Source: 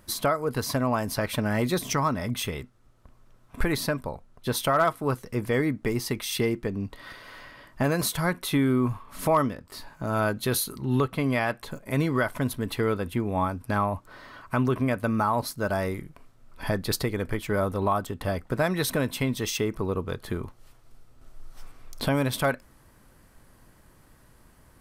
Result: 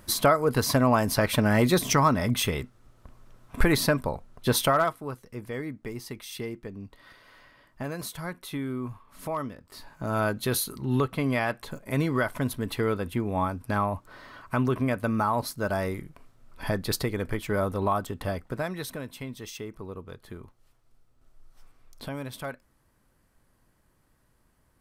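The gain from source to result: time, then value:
4.6 s +4 dB
5.11 s -9.5 dB
9.36 s -9.5 dB
10.06 s -1 dB
18.2 s -1 dB
19.01 s -11 dB

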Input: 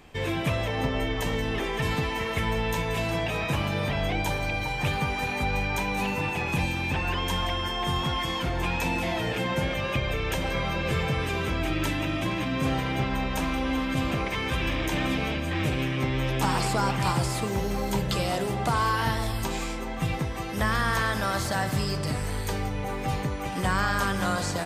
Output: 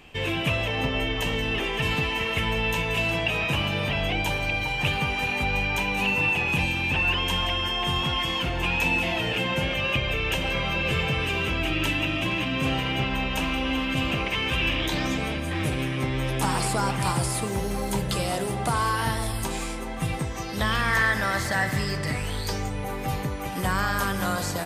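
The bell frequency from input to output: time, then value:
bell +12 dB 0.35 oct
14.78 s 2800 Hz
15.29 s 9900 Hz
20.15 s 9900 Hz
20.96 s 1900 Hz
22.09 s 1900 Hz
22.88 s 12000 Hz

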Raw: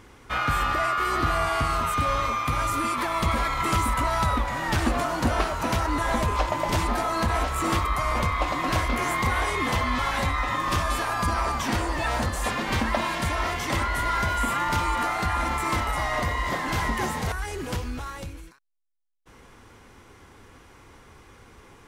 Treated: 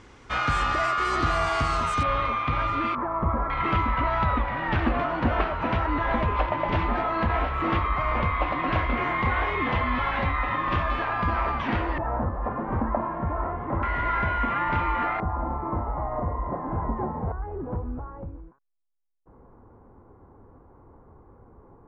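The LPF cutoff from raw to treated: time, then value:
LPF 24 dB/oct
7500 Hz
from 2.03 s 3400 Hz
from 2.95 s 1300 Hz
from 3.5 s 2900 Hz
from 11.98 s 1200 Hz
from 13.83 s 2500 Hz
from 15.2 s 1000 Hz

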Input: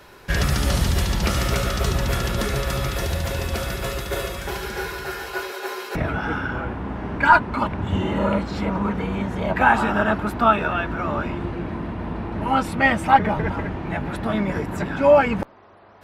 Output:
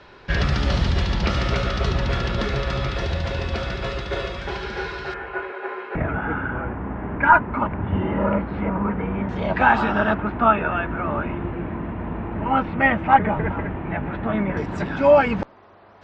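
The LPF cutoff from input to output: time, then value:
LPF 24 dB/oct
4700 Hz
from 5.14 s 2300 Hz
from 9.29 s 5300 Hz
from 10.14 s 2700 Hz
from 14.57 s 6100 Hz

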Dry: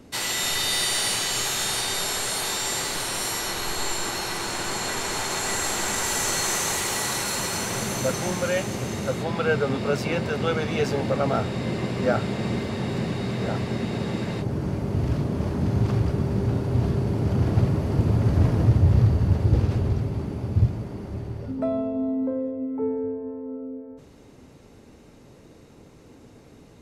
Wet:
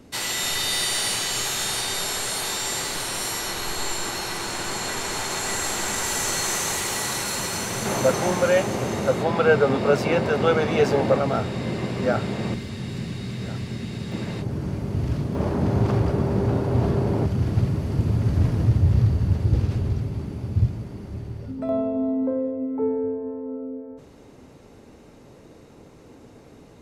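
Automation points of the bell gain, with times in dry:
bell 690 Hz 2.6 oct
-0.5 dB
from 7.85 s +7 dB
from 11.19 s 0 dB
from 12.54 s -11.5 dB
from 14.12 s -3.5 dB
from 15.35 s +6.5 dB
from 17.26 s -5 dB
from 21.69 s +3.5 dB

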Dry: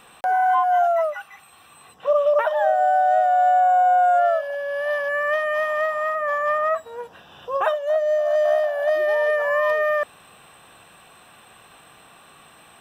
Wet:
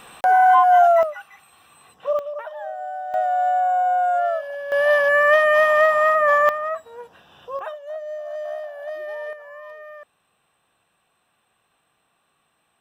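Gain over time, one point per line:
+5 dB
from 1.03 s -3 dB
from 2.19 s -12.5 dB
from 3.14 s -3 dB
from 4.72 s +7 dB
from 6.49 s -4.5 dB
from 7.59 s -11 dB
from 9.33 s -19 dB

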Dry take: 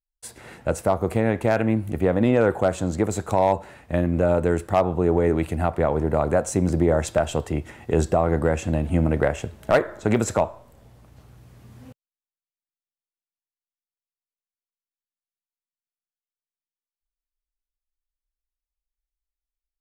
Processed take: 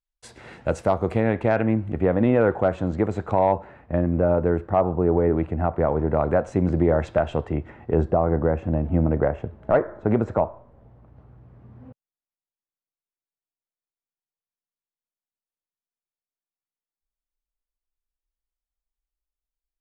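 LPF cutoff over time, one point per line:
0.89 s 5200 Hz
1.73 s 2300 Hz
3.27 s 2300 Hz
3.97 s 1400 Hz
5.73 s 1400 Hz
6.25 s 2300 Hz
7.3 s 2300 Hz
8.12 s 1200 Hz

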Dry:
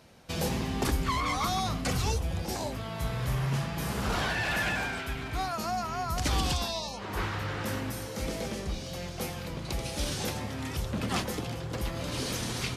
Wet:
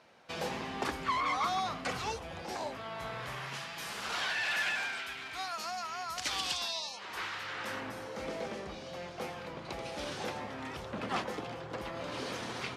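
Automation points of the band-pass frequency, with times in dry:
band-pass, Q 0.54
3.16 s 1300 Hz
3.62 s 3200 Hz
7.45 s 3200 Hz
7.94 s 980 Hz

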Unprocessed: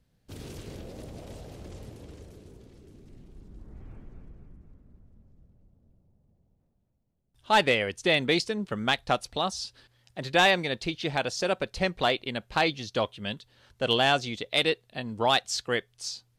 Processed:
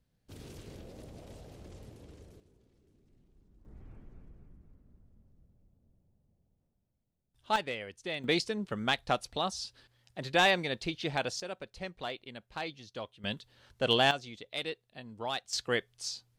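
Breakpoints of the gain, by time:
-6.5 dB
from 2.4 s -16 dB
from 3.65 s -6 dB
from 7.56 s -13.5 dB
from 8.24 s -4 dB
from 11.4 s -13.5 dB
from 13.24 s -2 dB
from 14.11 s -12 dB
from 15.53 s -2.5 dB

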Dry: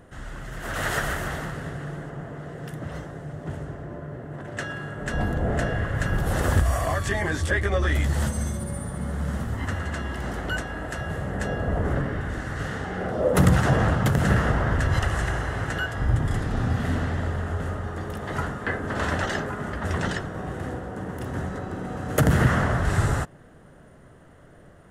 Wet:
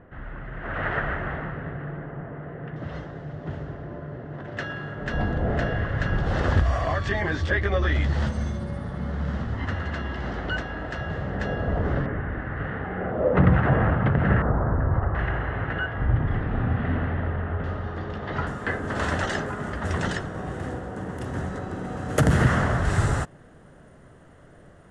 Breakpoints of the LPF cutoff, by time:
LPF 24 dB/oct
2400 Hz
from 2.76 s 4900 Hz
from 12.06 s 2400 Hz
from 14.42 s 1300 Hz
from 15.15 s 2700 Hz
from 17.64 s 4600 Hz
from 18.47 s 10000 Hz

